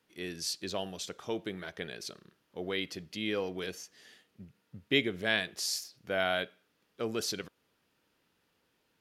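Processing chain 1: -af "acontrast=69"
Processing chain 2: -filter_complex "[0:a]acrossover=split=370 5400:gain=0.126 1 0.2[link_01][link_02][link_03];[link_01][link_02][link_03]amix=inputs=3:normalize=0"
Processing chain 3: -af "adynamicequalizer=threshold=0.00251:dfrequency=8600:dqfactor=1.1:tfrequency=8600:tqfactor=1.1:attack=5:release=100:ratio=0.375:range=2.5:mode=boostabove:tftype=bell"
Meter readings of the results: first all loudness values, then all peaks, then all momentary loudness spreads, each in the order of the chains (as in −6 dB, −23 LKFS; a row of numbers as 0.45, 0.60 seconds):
−28.0, −36.5, −34.0 LKFS; −6.5, −13.5, −12.0 dBFS; 13, 14, 13 LU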